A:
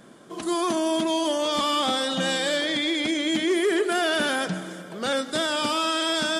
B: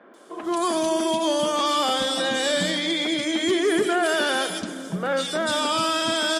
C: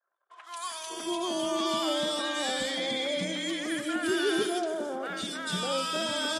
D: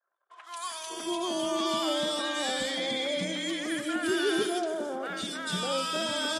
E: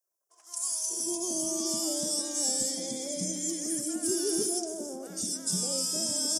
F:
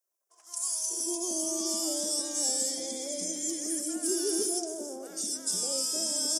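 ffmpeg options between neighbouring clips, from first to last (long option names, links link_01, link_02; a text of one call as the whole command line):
ffmpeg -i in.wav -filter_complex "[0:a]acrossover=split=270|2400[link_01][link_02][link_03];[link_03]adelay=140[link_04];[link_01]adelay=430[link_05];[link_05][link_02][link_04]amix=inputs=3:normalize=0,acontrast=62,volume=-3.5dB" out.wav
ffmpeg -i in.wav -filter_complex "[0:a]anlmdn=0.1,acrossover=split=970[link_01][link_02];[link_01]adelay=600[link_03];[link_03][link_02]amix=inputs=2:normalize=0,volume=-6.5dB" out.wav
ffmpeg -i in.wav -af anull out.wav
ffmpeg -i in.wav -af "firequalizer=gain_entry='entry(200,0);entry(1300,-20);entry(3800,-16);entry(5400,12)':delay=0.05:min_phase=1" out.wav
ffmpeg -i in.wav -af "highpass=frequency=270:width=0.5412,highpass=frequency=270:width=1.3066" out.wav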